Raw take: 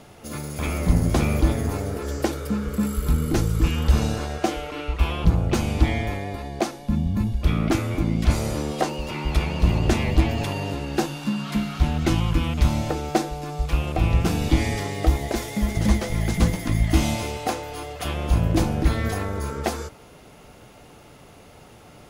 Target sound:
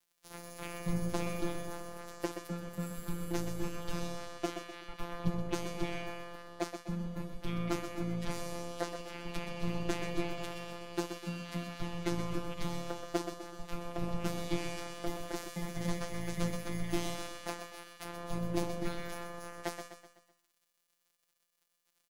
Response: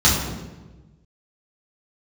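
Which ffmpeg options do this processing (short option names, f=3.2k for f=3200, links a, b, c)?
-af "afftfilt=real='hypot(re,im)*cos(PI*b)':imag='0':win_size=1024:overlap=0.75,aeval=exprs='sgn(val(0))*max(abs(val(0))-0.015,0)':c=same,aecho=1:1:126|252|378|504|630:0.398|0.187|0.0879|0.0413|0.0194,volume=-8.5dB"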